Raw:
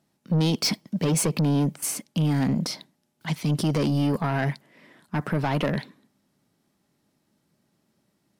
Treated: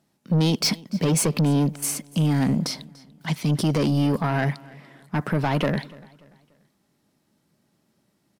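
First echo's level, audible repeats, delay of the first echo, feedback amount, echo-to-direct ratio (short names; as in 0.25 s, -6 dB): -22.5 dB, 2, 0.291 s, 39%, -22.0 dB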